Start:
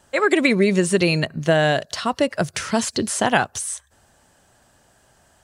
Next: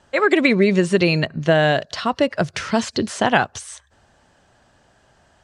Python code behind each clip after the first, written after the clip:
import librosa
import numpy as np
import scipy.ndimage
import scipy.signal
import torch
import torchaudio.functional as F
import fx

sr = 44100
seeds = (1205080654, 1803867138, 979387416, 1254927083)

y = scipy.signal.sosfilt(scipy.signal.butter(2, 5000.0, 'lowpass', fs=sr, output='sos'), x)
y = y * librosa.db_to_amplitude(1.5)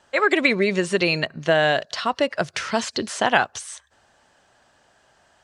y = fx.low_shelf(x, sr, hz=300.0, db=-11.5)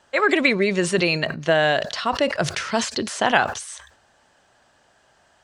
y = fx.sustainer(x, sr, db_per_s=100.0)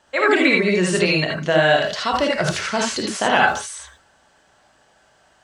y = fx.rev_gated(x, sr, seeds[0], gate_ms=100, shape='rising', drr_db=-1.0)
y = y * librosa.db_to_amplitude(-1.0)